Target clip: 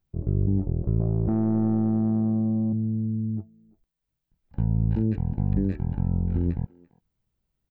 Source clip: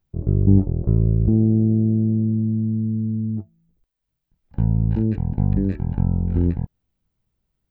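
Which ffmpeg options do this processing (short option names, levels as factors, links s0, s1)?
-filter_complex "[0:a]alimiter=limit=0.266:level=0:latency=1:release=81,asettb=1/sr,asplit=3[s0][s1][s2];[s0]atrim=end=1.004[s3];[s1]atrim=start=1:end=2.73,asetpts=PTS-STARTPTS,afade=t=in:d=0.004:c=qsin,afade=t=out:st=1.726:d=0.004:c=qsin,asplit=2[s4][s5];[s5]highpass=f=720:p=1,volume=10,asoftclip=type=tanh:threshold=0.266[s6];[s4][s6]amix=inputs=2:normalize=0,lowpass=f=1200:p=1,volume=0.501[s7];[s2]atrim=start=2.726[s8];[s3][s7]acrossfade=d=0.004:c1=hsin:c2=qsin[s9];[s9][s8]acrossfade=d=0.004:c1=qsin:c2=hsin,asplit=2[s10][s11];[s11]adelay=340,highpass=300,lowpass=3400,asoftclip=type=hard:threshold=0.1,volume=0.0891[s12];[s10][s12]amix=inputs=2:normalize=0,volume=0.668"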